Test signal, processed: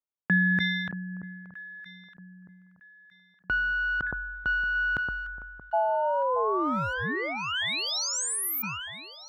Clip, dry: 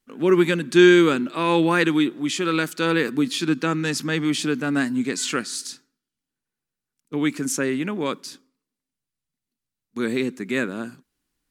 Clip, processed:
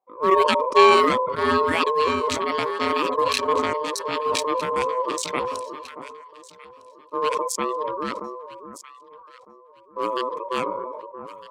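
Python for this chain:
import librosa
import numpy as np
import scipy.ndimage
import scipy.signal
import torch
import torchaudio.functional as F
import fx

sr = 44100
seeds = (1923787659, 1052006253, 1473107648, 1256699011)

p1 = fx.wiener(x, sr, points=41)
p2 = p1 * np.sin(2.0 * np.pi * 760.0 * np.arange(len(p1)) / sr)
p3 = fx.dereverb_blind(p2, sr, rt60_s=0.74)
p4 = scipy.signal.sosfilt(scipy.signal.butter(2, 110.0, 'highpass', fs=sr, output='sos'), p3)
p5 = p4 + fx.echo_alternate(p4, sr, ms=628, hz=1200.0, feedback_pct=50, wet_db=-11, dry=0)
p6 = fx.sustainer(p5, sr, db_per_s=30.0)
y = F.gain(torch.from_numpy(p6), 2.5).numpy()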